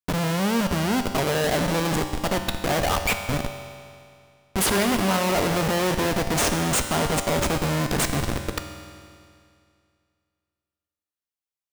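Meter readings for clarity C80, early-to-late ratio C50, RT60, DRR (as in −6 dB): 8.5 dB, 7.5 dB, 2.3 s, 6.0 dB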